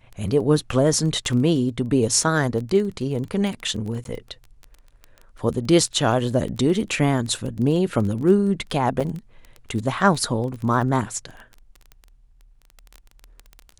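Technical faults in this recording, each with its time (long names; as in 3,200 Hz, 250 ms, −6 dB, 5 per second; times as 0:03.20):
surface crackle 17 per second −28 dBFS
0:04.04–0:04.05: drop-out 12 ms
0:09.00–0:09.01: drop-out 5.9 ms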